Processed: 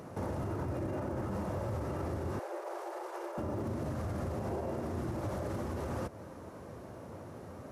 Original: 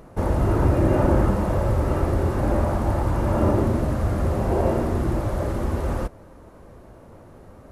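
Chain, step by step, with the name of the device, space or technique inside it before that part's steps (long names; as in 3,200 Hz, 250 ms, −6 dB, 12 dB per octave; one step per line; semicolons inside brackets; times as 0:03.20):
broadcast voice chain (high-pass filter 80 Hz 24 dB per octave; de-essing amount 85%; downward compressor 3 to 1, threshold −32 dBFS, peak gain reduction 12.5 dB; parametric band 5,700 Hz +4 dB 0.48 octaves; brickwall limiter −28.5 dBFS, peak gain reduction 8.5 dB)
0:02.39–0:03.38: Chebyshev high-pass filter 340 Hz, order 10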